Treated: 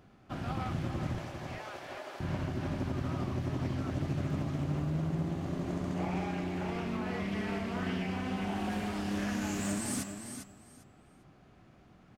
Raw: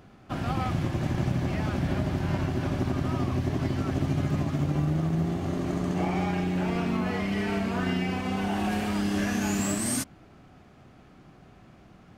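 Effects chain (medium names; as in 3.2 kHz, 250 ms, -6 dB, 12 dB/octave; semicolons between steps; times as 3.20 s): 1.18–2.20 s: high-pass 460 Hz 24 dB/octave; feedback delay 400 ms, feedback 19%, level -8 dB; loudspeaker Doppler distortion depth 0.24 ms; trim -7 dB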